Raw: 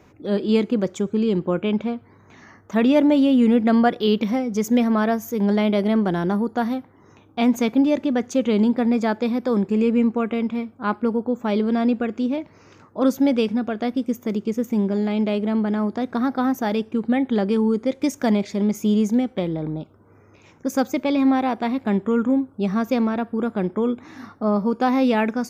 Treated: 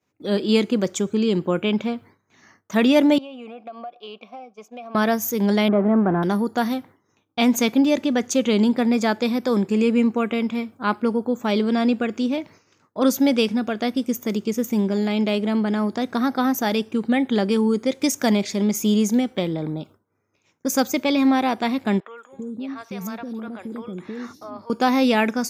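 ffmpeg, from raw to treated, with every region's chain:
-filter_complex "[0:a]asettb=1/sr,asplit=3[s0][s1][s2];[s0]atrim=end=3.184[s3];[s1]atrim=start=3.18:end=4.95,asetpts=PTS-STARTPTS,afade=t=in:d=0.004:c=qsin,afade=t=out:st=1.766:d=0.004:c=qsin,asplit=3[s4][s5][s6];[s4]bandpass=f=730:t=q:w=8,volume=1[s7];[s5]bandpass=f=1090:t=q:w=8,volume=0.501[s8];[s6]bandpass=f=2440:t=q:w=8,volume=0.355[s9];[s7][s8][s9]amix=inputs=3:normalize=0,acompressor=threshold=0.0224:ratio=6:attack=3.2:release=140:knee=1:detection=peak[s10];[s2]atrim=start=4.946[s11];[s3][s10]acrossfade=d=0.004:c1=hsin:c2=qsin[s12];[s12][s11]acrossfade=d=0.004:c1=qsin:c2=hsin,asettb=1/sr,asplit=3[s13][s14][s15];[s13]atrim=end=5.684[s16];[s14]atrim=start=5.68:end=6.23,asetpts=PTS-STARTPTS,afade=t=in:d=0.004:c=qsin,afade=t=out:st=0.546:d=0.004:c=qsin,aeval=exprs='val(0)+0.5*0.0531*sgn(val(0))':c=same,lowpass=f=1400:w=0.5412,lowpass=f=1400:w=1.3066[s17];[s15]atrim=start=6.226[s18];[s16][s17]acrossfade=d=0.004:c1=hsin:c2=qsin[s19];[s19][s18]acrossfade=d=0.004:c1=qsin:c2=hsin,asettb=1/sr,asplit=3[s20][s21][s22];[s20]atrim=end=22.004[s23];[s21]atrim=start=22:end=24.7,asetpts=PTS-STARTPTS,afade=t=in:d=0.004:c=qsin,afade=t=out:st=2.696:d=0.004:c=qsin,agate=range=0.0224:threshold=0.01:ratio=3:release=100:detection=peak,acompressor=threshold=0.0355:ratio=4:attack=3.2:release=140:knee=1:detection=peak,acrossover=split=520|4300[s24][s25][s26];[s26]adelay=170[s27];[s24]adelay=320[s28];[s28][s25][s27]amix=inputs=3:normalize=0,atrim=end_sample=119070[s29];[s22]atrim=start=24.696[s30];[s23][s29]acrossfade=d=0.004:c1=hsin:c2=qsin[s31];[s31][s30]acrossfade=d=0.004:c1=qsin:c2=hsin,highpass=94,agate=range=0.0224:threshold=0.0112:ratio=3:detection=peak,highshelf=f=2700:g=11.5"

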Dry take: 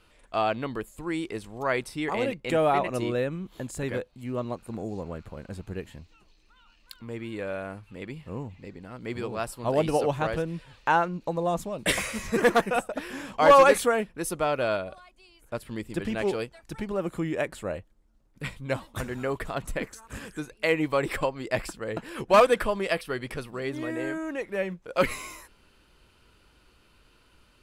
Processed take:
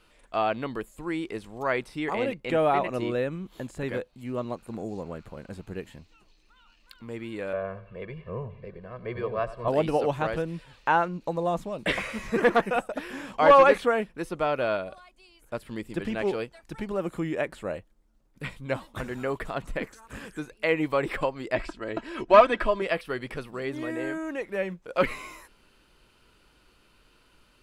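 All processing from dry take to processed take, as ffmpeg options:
-filter_complex "[0:a]asettb=1/sr,asplit=3[s0][s1][s2];[s0]atrim=end=7.534[s3];[s1]atrim=start=7.53:end=9.68,asetpts=PTS-STARTPTS,afade=t=in:d=0.004:c=qsin,afade=t=out:st=2.146:d=0.004:c=qsin,lowpass=2000,aecho=1:1:1.8:0.95,atrim=end_sample=94815,aecho=1:1:94|188|282:0.168|0.0621|0.023,atrim=end_sample=94815[s4];[s2]atrim=start=9.676[s5];[s3][s4]acrossfade=d=0.004:c1=hsin:c2=qsin[s6];[s6][s5]acrossfade=d=0.004:c1=qsin:c2=hsin,asettb=1/sr,asplit=3[s7][s8][s9];[s7]atrim=end=21.554[s10];[s8]atrim=start=21.55:end=22.82,asetpts=PTS-STARTPTS,afade=t=in:d=0.004:c=qsin,afade=t=out:st=1.266:d=0.004:c=qsin,lowpass=6000,aecho=1:1:3.1:0.61,atrim=end_sample=56007[s11];[s9]atrim=start=22.816[s12];[s10][s11]acrossfade=d=0.004:c1=hsin:c2=qsin[s13];[s13][s12]acrossfade=d=0.004:c1=qsin:c2=hsin,acrossover=split=3800[s14][s15];[s15]acompressor=threshold=0.00251:ratio=4:attack=1:release=60[s16];[s14][s16]amix=inputs=2:normalize=0,equalizer=f=78:t=o:w=1.1:g=-6"

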